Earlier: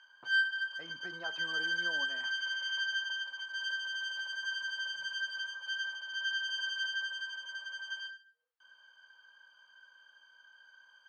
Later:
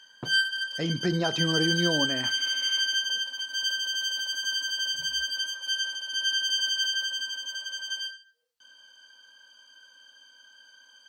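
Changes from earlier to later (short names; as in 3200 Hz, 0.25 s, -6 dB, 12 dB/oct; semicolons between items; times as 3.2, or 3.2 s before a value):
speech +9.5 dB; master: remove band-pass 1200 Hz, Q 1.5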